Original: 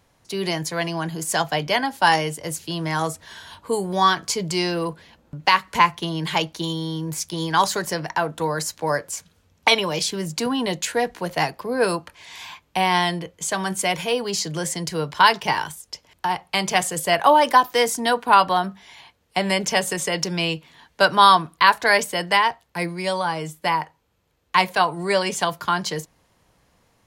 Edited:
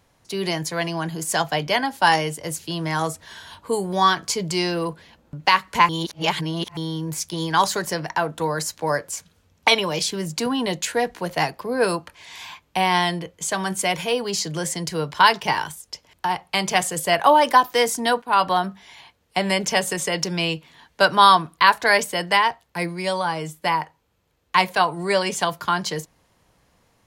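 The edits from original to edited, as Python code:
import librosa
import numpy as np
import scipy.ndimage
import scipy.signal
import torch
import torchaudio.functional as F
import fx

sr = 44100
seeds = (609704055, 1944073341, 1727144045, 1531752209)

y = fx.edit(x, sr, fx.reverse_span(start_s=5.89, length_s=0.88),
    fx.fade_in_from(start_s=18.22, length_s=0.25, floor_db=-15.0), tone=tone)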